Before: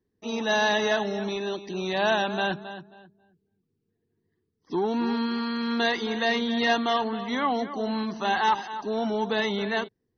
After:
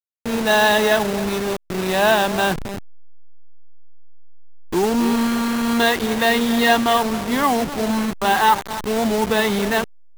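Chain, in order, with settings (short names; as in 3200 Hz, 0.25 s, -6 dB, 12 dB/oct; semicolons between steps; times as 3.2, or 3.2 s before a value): level-crossing sampler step -28.5 dBFS; gain +8 dB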